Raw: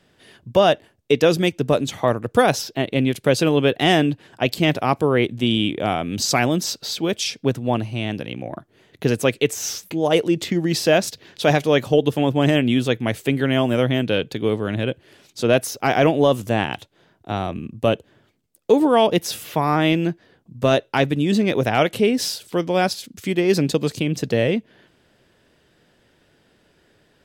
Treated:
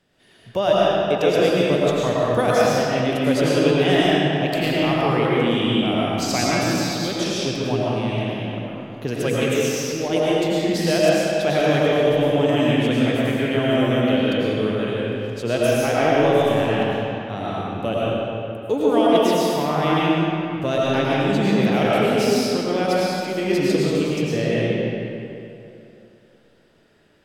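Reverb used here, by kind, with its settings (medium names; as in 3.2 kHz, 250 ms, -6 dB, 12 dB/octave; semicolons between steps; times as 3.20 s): algorithmic reverb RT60 2.8 s, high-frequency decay 0.7×, pre-delay 65 ms, DRR -7 dB; trim -7.5 dB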